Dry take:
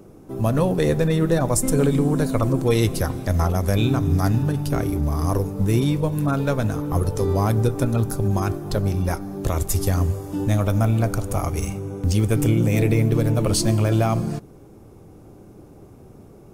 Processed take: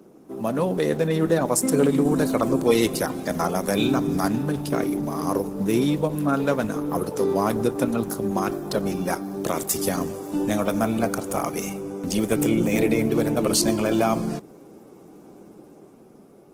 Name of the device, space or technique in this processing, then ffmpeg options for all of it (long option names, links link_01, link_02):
video call: -af "highpass=frequency=180:width=0.5412,highpass=frequency=180:width=1.3066,dynaudnorm=framelen=240:gausssize=9:maxgain=4dB,volume=-2dB" -ar 48000 -c:a libopus -b:a 16k